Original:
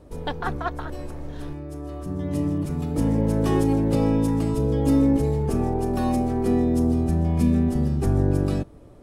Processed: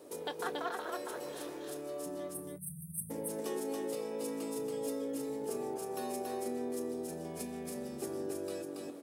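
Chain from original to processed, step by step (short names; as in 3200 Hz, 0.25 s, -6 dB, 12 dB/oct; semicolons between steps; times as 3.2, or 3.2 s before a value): HPF 140 Hz 12 dB/oct; bell 410 Hz +13 dB 1.4 oct; tape echo 0.205 s, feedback 82%, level -21 dB, low-pass 2400 Hz; spectral delete 2.28–3.1, 200–8200 Hz; compressor 3:1, threshold -29 dBFS, peak gain reduction 16 dB; tilt +4.5 dB/oct; doubler 24 ms -13.5 dB; echo 0.28 s -3 dB; gain -6 dB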